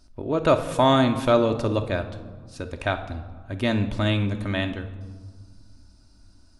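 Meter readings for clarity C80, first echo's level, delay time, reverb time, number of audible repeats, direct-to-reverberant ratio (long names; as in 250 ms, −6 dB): 14.0 dB, no echo audible, no echo audible, 1.6 s, no echo audible, 5.5 dB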